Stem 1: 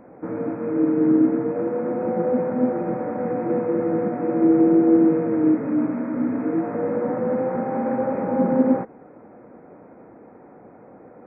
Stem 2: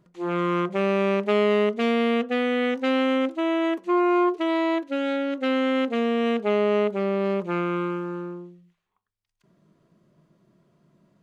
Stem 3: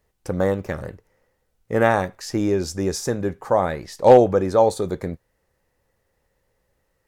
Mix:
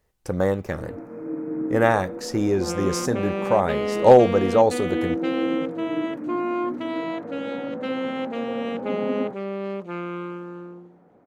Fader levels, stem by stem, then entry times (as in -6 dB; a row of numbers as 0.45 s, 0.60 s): -10.5 dB, -5.5 dB, -1.0 dB; 0.50 s, 2.40 s, 0.00 s